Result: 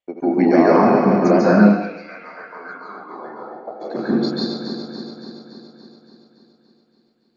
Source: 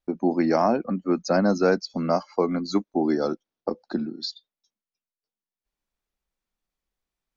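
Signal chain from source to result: regenerating reverse delay 0.142 s, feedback 79%, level -7 dB; 1.5–3.8 band-pass 3200 Hz -> 640 Hz, Q 5.5; reverb RT60 0.90 s, pre-delay 0.14 s, DRR -4.5 dB; gain -7 dB

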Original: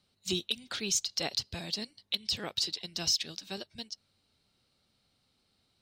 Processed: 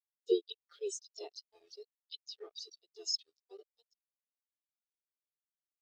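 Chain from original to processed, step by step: elliptic high-pass 320 Hz, stop band 40 dB; bell 3000 Hz +3 dB 0.44 oct; harmoniser +4 st -3 dB; small resonant body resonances 420/1200 Hz, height 10 dB, ringing for 50 ms; bit-crush 6-bit; spectral expander 2.5:1; gain -1.5 dB

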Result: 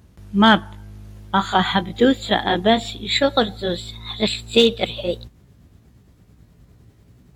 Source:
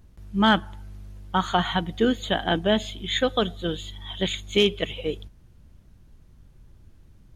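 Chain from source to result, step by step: gliding pitch shift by +3.5 st starting unshifted; HPF 75 Hz 12 dB/oct; gain +6.5 dB

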